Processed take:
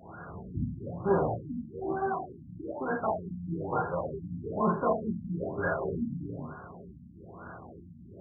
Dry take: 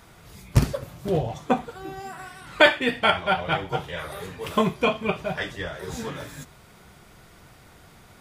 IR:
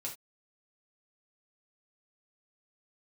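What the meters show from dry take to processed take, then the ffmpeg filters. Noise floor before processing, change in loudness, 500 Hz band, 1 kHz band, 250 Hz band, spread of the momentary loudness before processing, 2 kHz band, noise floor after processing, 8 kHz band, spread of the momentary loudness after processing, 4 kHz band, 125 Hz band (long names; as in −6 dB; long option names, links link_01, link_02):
−52 dBFS, −8.0 dB, −5.5 dB, −6.0 dB, −3.5 dB, 19 LU, −14.5 dB, −50 dBFS, below −35 dB, 19 LU, below −40 dB, −6.5 dB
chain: -filter_complex "[0:a]asplit=2[link_01][link_02];[link_02]acompressor=threshold=-29dB:ratio=16,volume=1dB[link_03];[link_01][link_03]amix=inputs=2:normalize=0,alimiter=limit=-11.5dB:level=0:latency=1:release=209,aeval=exprs='clip(val(0),-1,0.02)':channel_layout=same,highpass=100,lowpass=2500,crystalizer=i=8.5:c=0[link_04];[1:a]atrim=start_sample=2205,afade=type=out:start_time=0.36:duration=0.01,atrim=end_sample=16317,asetrate=32634,aresample=44100[link_05];[link_04][link_05]afir=irnorm=-1:irlink=0,afftfilt=real='re*lt(b*sr/1024,280*pow(1700/280,0.5+0.5*sin(2*PI*1.1*pts/sr)))':imag='im*lt(b*sr/1024,280*pow(1700/280,0.5+0.5*sin(2*PI*1.1*pts/sr)))':win_size=1024:overlap=0.75,volume=-2dB"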